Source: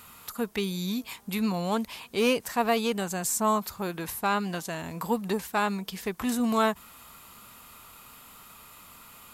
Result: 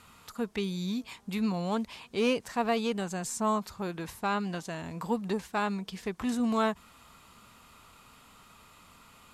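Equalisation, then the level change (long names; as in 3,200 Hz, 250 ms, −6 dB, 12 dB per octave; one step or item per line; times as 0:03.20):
low-pass filter 7,700 Hz 12 dB per octave
low-shelf EQ 410 Hz +3.5 dB
−4.5 dB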